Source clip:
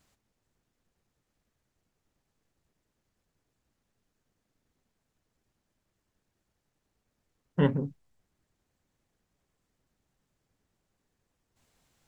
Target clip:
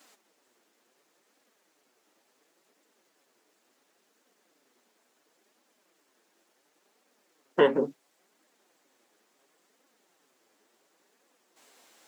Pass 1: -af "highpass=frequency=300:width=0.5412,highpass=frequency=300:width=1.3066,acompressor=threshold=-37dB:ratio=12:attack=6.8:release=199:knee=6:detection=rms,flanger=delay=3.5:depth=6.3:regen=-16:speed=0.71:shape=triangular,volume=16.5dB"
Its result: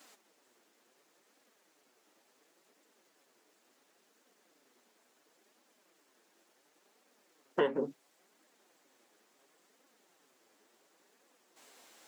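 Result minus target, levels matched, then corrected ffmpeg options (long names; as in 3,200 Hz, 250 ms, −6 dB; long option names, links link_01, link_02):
downward compressor: peak gain reduction +9.5 dB
-af "highpass=frequency=300:width=0.5412,highpass=frequency=300:width=1.3066,acompressor=threshold=-26.5dB:ratio=12:attack=6.8:release=199:knee=6:detection=rms,flanger=delay=3.5:depth=6.3:regen=-16:speed=0.71:shape=triangular,volume=16.5dB"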